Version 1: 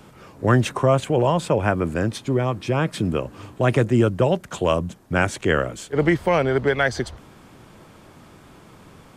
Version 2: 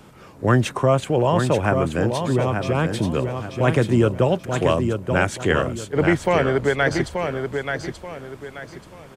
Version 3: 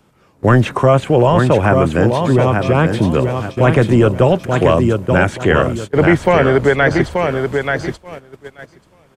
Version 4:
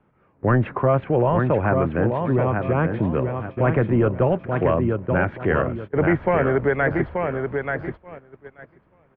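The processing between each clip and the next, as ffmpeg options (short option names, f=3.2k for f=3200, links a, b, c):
-af "aecho=1:1:882|1764|2646|3528:0.501|0.16|0.0513|0.0164"
-filter_complex "[0:a]apsyclip=11.5dB,agate=range=-16dB:threshold=-20dB:ratio=16:detection=peak,acrossover=split=3000[a][b];[b]acompressor=threshold=-32dB:ratio=4:attack=1:release=60[c];[a][c]amix=inputs=2:normalize=0,volume=-3.5dB"
-af "lowpass=f=2.2k:w=0.5412,lowpass=f=2.2k:w=1.3066,volume=-7.5dB"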